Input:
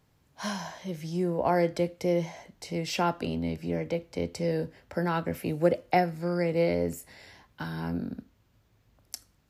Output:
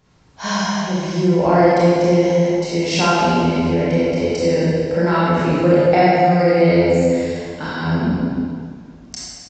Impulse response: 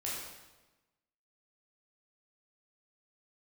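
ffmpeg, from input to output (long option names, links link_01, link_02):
-filter_complex "[1:a]atrim=start_sample=2205,asetrate=22932,aresample=44100[link_01];[0:a][link_01]afir=irnorm=-1:irlink=0,asplit=2[link_02][link_03];[link_03]alimiter=limit=-17dB:level=0:latency=1,volume=-2dB[link_04];[link_02][link_04]amix=inputs=2:normalize=0,aresample=16000,aresample=44100,volume=2.5dB"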